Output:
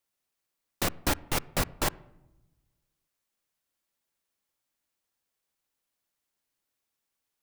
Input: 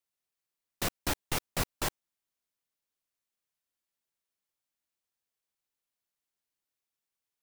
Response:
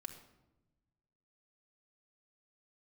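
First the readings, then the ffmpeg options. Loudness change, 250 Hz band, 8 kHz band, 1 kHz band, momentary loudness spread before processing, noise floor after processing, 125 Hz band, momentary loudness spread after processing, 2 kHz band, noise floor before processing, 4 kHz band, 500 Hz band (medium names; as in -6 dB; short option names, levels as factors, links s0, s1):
+3.5 dB, +5.0 dB, +2.5 dB, +4.5 dB, 3 LU, -84 dBFS, +4.0 dB, 3 LU, +3.5 dB, under -85 dBFS, +2.5 dB, +4.5 dB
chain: -filter_complex "[0:a]alimiter=limit=0.0944:level=0:latency=1:release=102,asplit=2[s0][s1];[1:a]atrim=start_sample=2205,lowpass=2400[s2];[s1][s2]afir=irnorm=-1:irlink=0,volume=0.398[s3];[s0][s3]amix=inputs=2:normalize=0,volume=1.78"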